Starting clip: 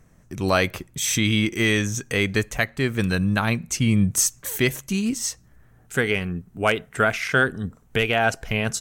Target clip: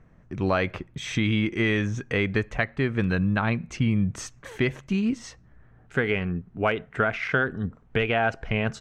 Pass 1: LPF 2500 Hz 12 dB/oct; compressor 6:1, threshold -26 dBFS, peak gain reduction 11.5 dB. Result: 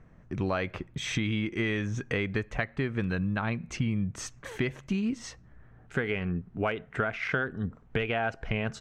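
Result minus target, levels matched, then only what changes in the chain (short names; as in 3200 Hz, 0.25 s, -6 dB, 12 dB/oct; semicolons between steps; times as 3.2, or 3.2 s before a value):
compressor: peak gain reduction +6 dB
change: compressor 6:1, threshold -18.5 dBFS, peak gain reduction 5 dB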